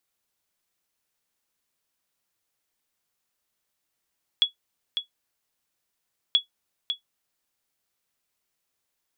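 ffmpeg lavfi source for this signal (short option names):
-f lavfi -i "aevalsrc='0.299*(sin(2*PI*3370*mod(t,1.93))*exp(-6.91*mod(t,1.93)/0.12)+0.398*sin(2*PI*3370*max(mod(t,1.93)-0.55,0))*exp(-6.91*max(mod(t,1.93)-0.55,0)/0.12))':d=3.86:s=44100"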